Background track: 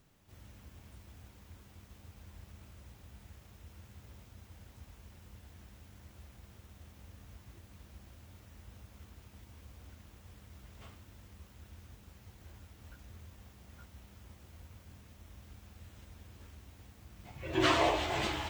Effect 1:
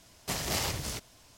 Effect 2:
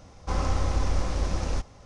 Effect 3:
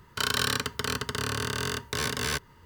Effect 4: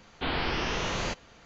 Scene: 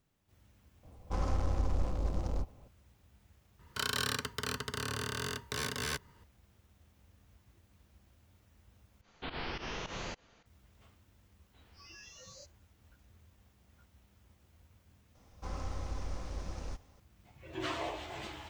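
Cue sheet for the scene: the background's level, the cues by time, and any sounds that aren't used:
background track -10 dB
0.83 add 2 -6 dB + Wiener smoothing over 25 samples
3.59 add 3 -7 dB
9.01 replace with 4 -9.5 dB + pump 106 bpm, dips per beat 2, -16 dB, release 0.108 s
11.32 add 4 -11.5 dB + spectral noise reduction 26 dB
15.15 add 2 -13.5 dB
not used: 1

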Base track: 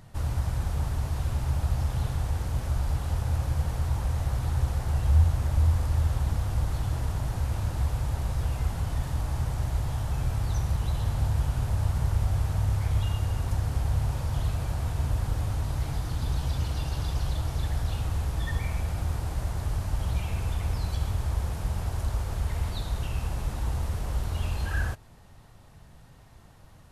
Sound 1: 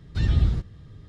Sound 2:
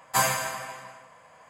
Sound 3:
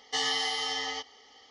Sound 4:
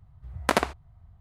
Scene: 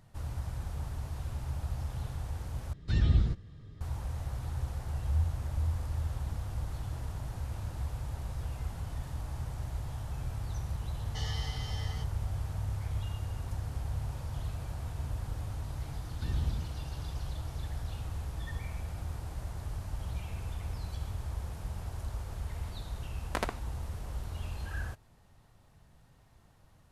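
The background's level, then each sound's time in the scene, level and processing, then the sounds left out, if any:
base track -9 dB
2.73 replace with 1 -4.5 dB
11.02 add 3 -13 dB + Chebyshev low-pass 9400 Hz
16.05 add 1 -13.5 dB
22.86 add 4 -11 dB
not used: 2

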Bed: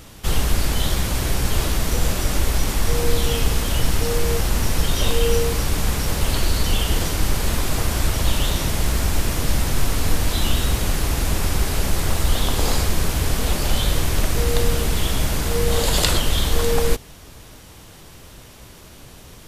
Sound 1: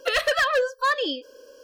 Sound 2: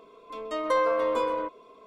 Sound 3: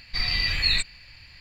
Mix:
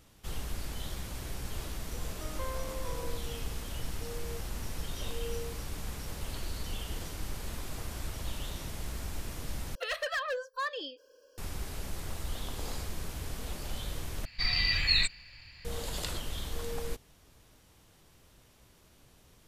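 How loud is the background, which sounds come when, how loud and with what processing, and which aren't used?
bed -18 dB
1.69 add 2 -17 dB
9.75 replace with 1 -11.5 dB + bell 160 Hz -15 dB 1.1 oct
14.25 replace with 3 -3.5 dB

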